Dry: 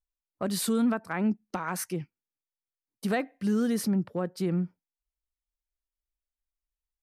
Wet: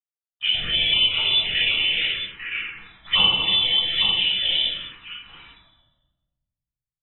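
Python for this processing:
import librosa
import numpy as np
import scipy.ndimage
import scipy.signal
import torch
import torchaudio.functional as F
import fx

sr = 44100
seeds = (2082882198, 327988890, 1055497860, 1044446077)

p1 = fx.pitch_trill(x, sr, semitones=5.5, every_ms=90)
p2 = fx.env_lowpass(p1, sr, base_hz=1600.0, full_db=-24.5)
p3 = fx.low_shelf_res(p2, sr, hz=550.0, db=-7.5, q=3.0)
p4 = fx.level_steps(p3, sr, step_db=13)
p5 = p3 + (p4 * librosa.db_to_amplitude(-1.0))
p6 = fx.quant_companded(p5, sr, bits=6)
p7 = fx.freq_invert(p6, sr, carrier_hz=3700)
p8 = p7 + fx.echo_multitap(p7, sr, ms=(239, 315, 847), db=(-9.0, -13.0, -6.5), dry=0)
p9 = fx.room_shoebox(p8, sr, seeds[0], volume_m3=700.0, walls='mixed', distance_m=6.1)
p10 = fx.env_phaser(p9, sr, low_hz=420.0, high_hz=1800.0, full_db=-13.0)
y = p10 * librosa.db_to_amplitude(-1.5)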